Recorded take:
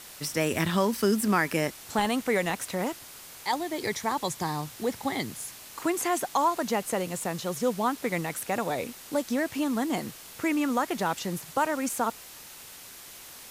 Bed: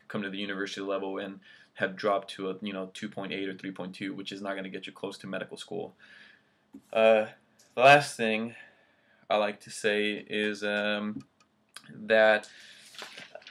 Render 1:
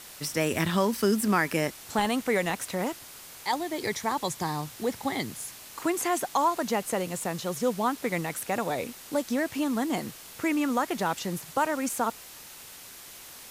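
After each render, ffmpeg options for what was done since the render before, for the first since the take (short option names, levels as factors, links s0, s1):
-af anull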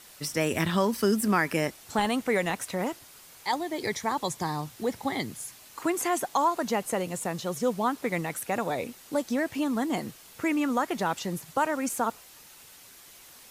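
-af "afftdn=nr=6:nf=-46"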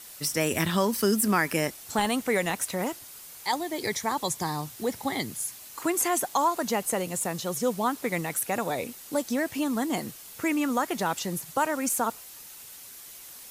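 -af "highshelf=f=6100:g=9"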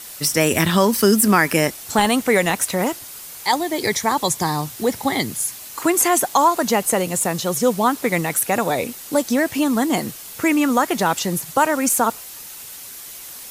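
-af "volume=2.82,alimiter=limit=0.794:level=0:latency=1"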